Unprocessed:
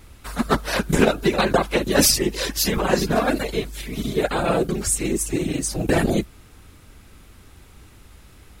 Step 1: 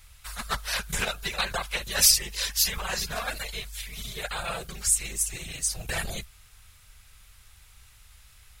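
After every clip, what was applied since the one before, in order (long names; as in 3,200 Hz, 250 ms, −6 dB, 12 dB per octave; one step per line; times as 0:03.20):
guitar amp tone stack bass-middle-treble 10-0-10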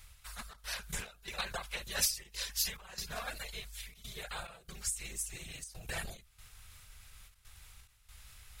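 reversed playback
upward compression, threshold −36 dBFS
reversed playback
gate pattern "xxxxx.xxxx..xxxx" 141 BPM −12 dB
every ending faded ahead of time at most 140 dB per second
level −8.5 dB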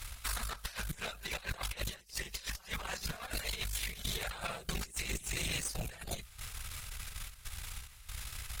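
compressor whose output falls as the input rises −46 dBFS, ratio −0.5
echo ahead of the sound 250 ms −19.5 dB
harmonic generator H 6 −18 dB, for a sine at −29.5 dBFS
level +6.5 dB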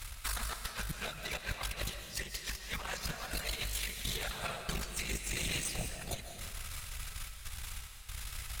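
comb and all-pass reverb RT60 1.4 s, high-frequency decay 0.95×, pre-delay 110 ms, DRR 6 dB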